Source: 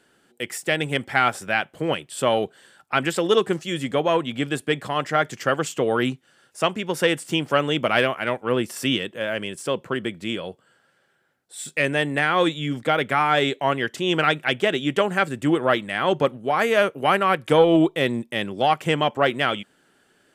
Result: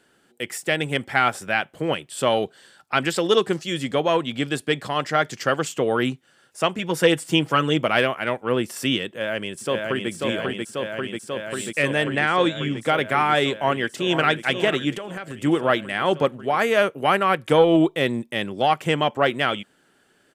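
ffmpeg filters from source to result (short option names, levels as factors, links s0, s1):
-filter_complex "[0:a]asettb=1/sr,asplit=3[s0][s1][s2];[s0]atrim=end=2.204[s3];[s1]atrim=start=2.2:end=5.65,asetpts=PTS-STARTPTS,afade=t=in:d=0.004:c=qsin,afade=t=out:st=3.446:d=0.004:c=qsin,equalizer=f=4700:t=o:w=0.78:g=5.5[s4];[s2]atrim=start=5.646[s5];[s3][s4]acrossfade=d=0.004:c1=hsin:c2=qsin[s6];[s6][s5]acrossfade=d=0.004:c1=qsin:c2=hsin,asettb=1/sr,asplit=3[s7][s8][s9];[s7]atrim=end=6.784[s10];[s8]atrim=start=6.78:end=7.83,asetpts=PTS-STARTPTS,afade=t=in:d=0.004:c=qsin,afade=t=out:st=1.046:d=0.004:c=qsin,aecho=1:1:6.2:0.62,atrim=end_sample=46305[s11];[s9]atrim=start=7.826[s12];[s10][s11]acrossfade=d=0.004:c1=hsin:c2=qsin[s13];[s13][s12]acrossfade=d=0.004:c1=qsin:c2=hsin,asplit=2[s14][s15];[s15]afade=t=in:st=9.07:d=0.01,afade=t=out:st=10.1:d=0.01,aecho=0:1:540|1080|1620|2160|2700|3240|3780|4320|4860|5400|5940|6480:0.749894|0.63741|0.541799|0.460529|0.391449|0.332732|0.282822|0.240399|0.204339|0.173688|0.147635|0.12549[s16];[s14][s16]amix=inputs=2:normalize=0,asettb=1/sr,asplit=3[s17][s18][s19];[s17]atrim=end=12.044[s20];[s18]atrim=start=12.04:end=12.81,asetpts=PTS-STARTPTS,afade=t=in:d=0.004:c=qsin,afade=t=out:st=0.766:d=0.004:c=qsin,lowpass=7200[s21];[s19]atrim=start=12.806[s22];[s20][s21]acrossfade=d=0.004:c1=hsin:c2=qsin[s23];[s23][s22]acrossfade=d=0.004:c1=qsin:c2=hsin,asplit=2[s24][s25];[s25]afade=t=in:st=13.51:d=0.01,afade=t=out:st=14.26:d=0.01,aecho=0:1:490|980|1470|1960|2450:0.316228|0.142302|0.0640361|0.0288163|0.0129673[s26];[s24][s26]amix=inputs=2:normalize=0,asettb=1/sr,asplit=3[s27][s28][s29];[s27]atrim=end=14.914[s30];[s28]atrim=start=14.91:end=15.44,asetpts=PTS-STARTPTS,afade=t=in:d=0.004:c=qsin,afade=t=out:st=0.526:d=0.004:c=qsin,acompressor=threshold=0.0398:ratio=12:attack=3.2:release=140:knee=1:detection=peak[s31];[s29]atrim=start=15.436[s32];[s30][s31]acrossfade=d=0.004:c1=hsin:c2=qsin[s33];[s33][s32]acrossfade=d=0.004:c1=qsin:c2=hsin"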